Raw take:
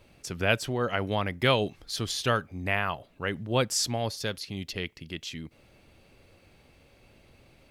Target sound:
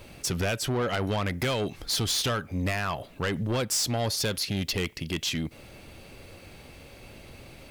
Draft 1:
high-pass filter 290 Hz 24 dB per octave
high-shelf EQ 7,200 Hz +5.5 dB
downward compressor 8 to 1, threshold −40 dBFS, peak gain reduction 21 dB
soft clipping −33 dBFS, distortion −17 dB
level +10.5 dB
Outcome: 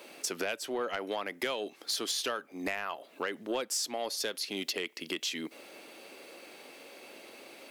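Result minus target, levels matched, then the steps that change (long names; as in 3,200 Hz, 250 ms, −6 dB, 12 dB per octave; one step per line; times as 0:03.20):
downward compressor: peak gain reduction +9.5 dB; 250 Hz band −2.5 dB
change: downward compressor 8 to 1, threshold −29 dBFS, peak gain reduction 12 dB
remove: high-pass filter 290 Hz 24 dB per octave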